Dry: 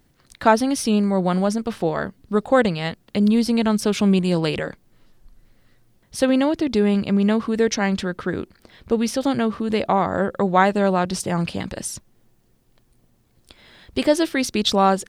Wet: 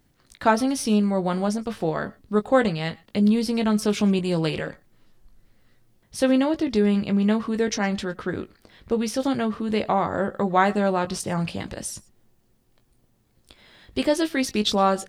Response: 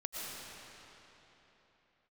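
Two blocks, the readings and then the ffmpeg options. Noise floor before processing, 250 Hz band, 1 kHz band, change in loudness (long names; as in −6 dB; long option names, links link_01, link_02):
−61 dBFS, −2.5 dB, −3.0 dB, −3.0 dB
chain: -filter_complex "[0:a]asplit=2[link_01][link_02];[1:a]atrim=start_sample=2205,atrim=end_sample=4410,adelay=19[link_03];[link_02][link_03]afir=irnorm=-1:irlink=0,volume=-5dB[link_04];[link_01][link_04]amix=inputs=2:normalize=0,volume=-3.5dB"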